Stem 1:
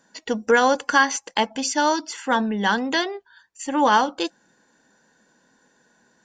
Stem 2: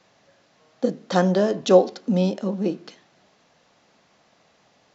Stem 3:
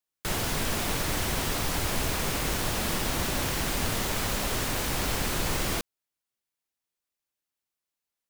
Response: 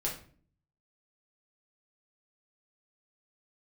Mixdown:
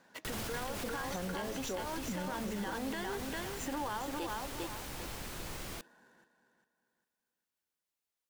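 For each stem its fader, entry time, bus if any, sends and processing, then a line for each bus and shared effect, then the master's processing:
−1.5 dB, 0.00 s, bus A, no send, echo send −8.5 dB, running median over 9 samples; low-shelf EQ 230 Hz −6.5 dB; downward compressor, threshold −27 dBFS, peak gain reduction 13.5 dB
−11.0 dB, 0.00 s, bus A, no send, no echo send, no processing
−2.5 dB, 0.00 s, no bus, no send, no echo send, automatic ducking −12 dB, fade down 1.35 s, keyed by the first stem
bus A: 0.0 dB, downward compressor, threshold −31 dBFS, peak gain reduction 12 dB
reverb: not used
echo: repeating echo 401 ms, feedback 33%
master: brickwall limiter −29 dBFS, peak gain reduction 10 dB

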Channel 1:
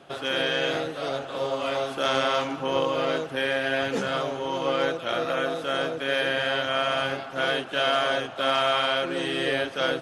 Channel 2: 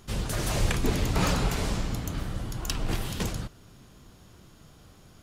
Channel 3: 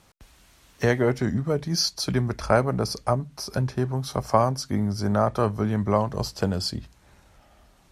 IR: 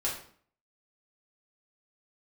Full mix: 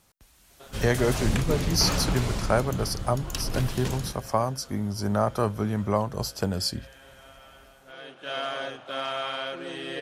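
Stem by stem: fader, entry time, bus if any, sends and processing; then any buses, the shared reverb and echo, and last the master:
−8.0 dB, 0.50 s, no send, echo send −23.5 dB, automatic ducking −19 dB, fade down 1.80 s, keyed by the third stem
−1.5 dB, 0.65 s, no send, echo send −14 dB, no processing
−7.0 dB, 0.00 s, no send, no echo send, high-shelf EQ 8,200 Hz +12 dB; automatic gain control gain up to 6 dB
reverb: not used
echo: single-tap delay 199 ms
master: no processing

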